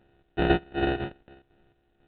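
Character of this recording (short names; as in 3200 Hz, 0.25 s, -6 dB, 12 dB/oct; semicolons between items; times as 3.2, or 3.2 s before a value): a buzz of ramps at a fixed pitch in blocks of 128 samples; chopped level 2 Hz, depth 60%, duty 45%; aliases and images of a low sample rate 1100 Hz, jitter 0%; µ-law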